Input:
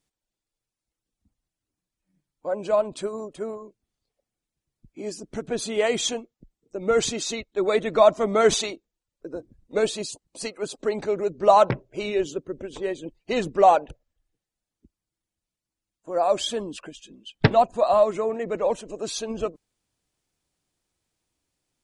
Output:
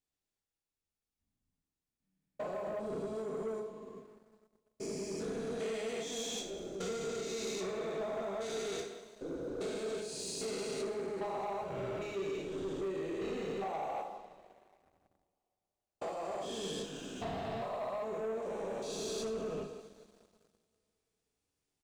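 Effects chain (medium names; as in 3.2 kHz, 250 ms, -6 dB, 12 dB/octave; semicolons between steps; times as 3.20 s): spectrogram pixelated in time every 400 ms; 2.67–3.13 s: bass shelf 370 Hz +11.5 dB; compression 16:1, threshold -39 dBFS, peak gain reduction 19 dB; speakerphone echo 180 ms, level -12 dB; reverberation, pre-delay 3 ms, DRR -1 dB; waveshaping leveller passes 2; trim -5 dB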